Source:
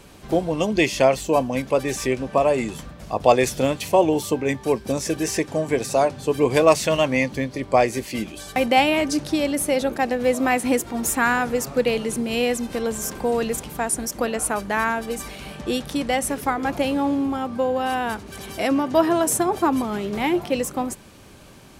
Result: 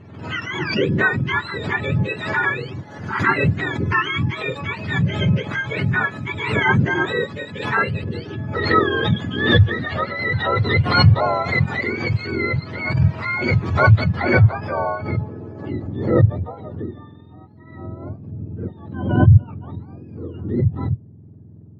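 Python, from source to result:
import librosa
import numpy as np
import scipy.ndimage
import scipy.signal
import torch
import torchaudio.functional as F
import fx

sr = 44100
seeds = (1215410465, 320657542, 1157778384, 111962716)

y = fx.octave_mirror(x, sr, pivot_hz=1000.0)
y = fx.filter_sweep_lowpass(y, sr, from_hz=2000.0, to_hz=260.0, start_s=13.9, end_s=17.38, q=0.78)
y = fx.pre_swell(y, sr, db_per_s=65.0)
y = y * 10.0 ** (1.5 / 20.0)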